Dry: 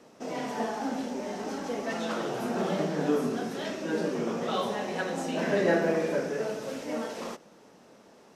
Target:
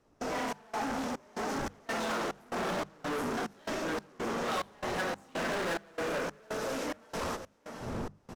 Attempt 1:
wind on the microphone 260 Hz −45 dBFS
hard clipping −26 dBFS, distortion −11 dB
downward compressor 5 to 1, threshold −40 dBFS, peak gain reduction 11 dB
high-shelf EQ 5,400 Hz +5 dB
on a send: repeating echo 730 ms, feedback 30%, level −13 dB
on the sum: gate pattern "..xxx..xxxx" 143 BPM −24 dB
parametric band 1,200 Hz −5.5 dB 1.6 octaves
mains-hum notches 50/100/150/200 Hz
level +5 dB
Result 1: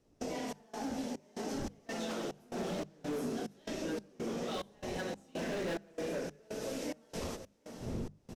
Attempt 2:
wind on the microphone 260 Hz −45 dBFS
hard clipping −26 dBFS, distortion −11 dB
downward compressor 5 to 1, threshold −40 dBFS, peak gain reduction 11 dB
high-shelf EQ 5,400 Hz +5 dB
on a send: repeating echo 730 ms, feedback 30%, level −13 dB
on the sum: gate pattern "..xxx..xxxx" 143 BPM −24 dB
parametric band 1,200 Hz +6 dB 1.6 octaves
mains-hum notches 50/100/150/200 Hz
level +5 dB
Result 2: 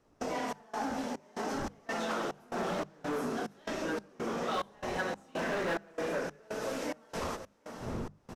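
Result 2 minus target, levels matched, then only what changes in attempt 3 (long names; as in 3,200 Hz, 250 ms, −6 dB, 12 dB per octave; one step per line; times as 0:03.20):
hard clipping: distortion −6 dB
change: hard clipping −35 dBFS, distortion −5 dB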